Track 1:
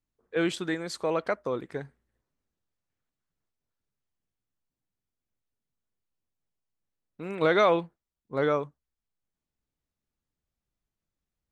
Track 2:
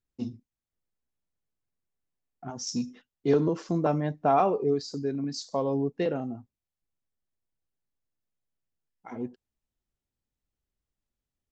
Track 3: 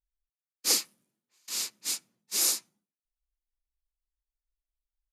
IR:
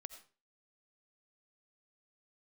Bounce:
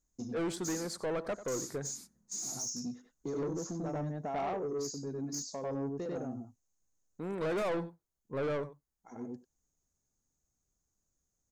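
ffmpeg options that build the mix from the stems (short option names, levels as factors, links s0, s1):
-filter_complex "[0:a]asoftclip=type=tanh:threshold=0.0668,volume=1.06,asplit=3[s0][s1][s2];[s1]volume=0.126[s3];[1:a]highshelf=f=6800:g=6.5,volume=0.841,asplit=2[s4][s5];[s5]volume=0.398[s6];[2:a]acrossover=split=5200[s7][s8];[s8]acompressor=threshold=0.0282:ratio=4:attack=1:release=60[s9];[s7][s9]amix=inputs=2:normalize=0,lowshelf=f=320:t=q:w=1.5:g=12.5,volume=0.422,asplit=2[s10][s11];[s11]volume=0.316[s12];[s2]apad=whole_len=508015[s13];[s4][s13]sidechaincompress=threshold=0.00355:ratio=5:attack=16:release=637[s14];[s14][s10]amix=inputs=2:normalize=0,lowpass=f=6600:t=q:w=12,acompressor=threshold=0.0112:ratio=2.5,volume=1[s15];[s3][s6][s12]amix=inputs=3:normalize=0,aecho=0:1:94:1[s16];[s0][s15][s16]amix=inputs=3:normalize=0,equalizer=f=2800:w=1.4:g=-14,asoftclip=type=tanh:threshold=0.0316"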